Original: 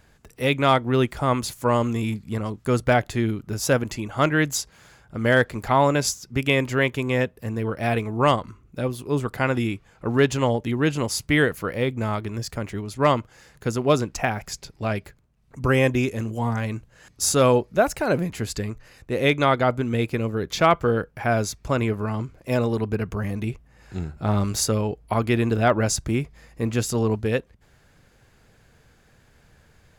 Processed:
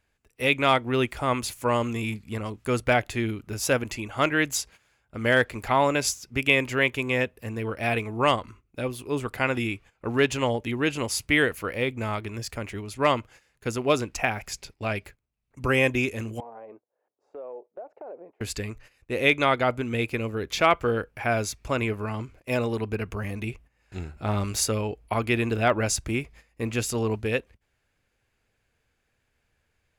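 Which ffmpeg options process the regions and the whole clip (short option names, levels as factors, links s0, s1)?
-filter_complex "[0:a]asettb=1/sr,asplit=3[s0][s1][s2];[s0]atrim=end=16.404[s3];[s1]atrim=start=16.4:end=18.41,asetpts=PTS-STARTPTS,afade=t=in:d=0.004:c=qsin,afade=t=out:st=2.006:d=0.004:c=qsin,asuperpass=centerf=580:order=4:qfactor=1.3,acompressor=threshold=0.0158:ratio=4:attack=3.2:release=140:knee=1:detection=peak[s4];[s2]atrim=start=18.406[s5];[s3][s4]acrossfade=d=0.004:c1=hsin:c2=qsin[s6];[s6][s5]acrossfade=d=0.004:c1=qsin:c2=hsin,agate=range=0.2:threshold=0.00631:ratio=16:detection=peak,equalizer=f=160:t=o:w=0.67:g=-7,equalizer=f=2500:t=o:w=0.67:g=7,equalizer=f=10000:t=o:w=0.67:g=3,volume=0.708"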